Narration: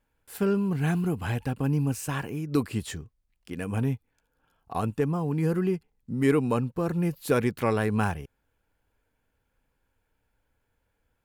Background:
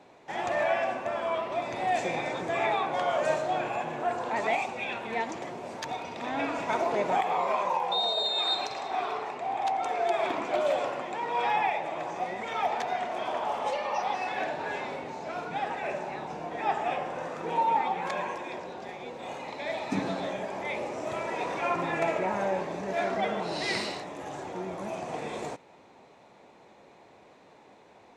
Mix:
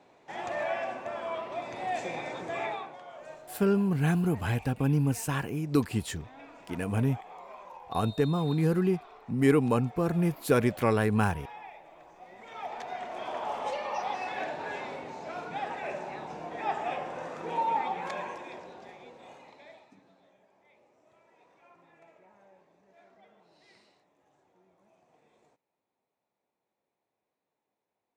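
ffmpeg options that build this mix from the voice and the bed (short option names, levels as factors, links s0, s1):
-filter_complex "[0:a]adelay=3200,volume=1[s0];[1:a]volume=3.55,afade=t=out:st=2.59:d=0.39:silence=0.199526,afade=t=in:st=12.21:d=1.31:silence=0.158489,afade=t=out:st=17.95:d=2.01:silence=0.0398107[s1];[s0][s1]amix=inputs=2:normalize=0"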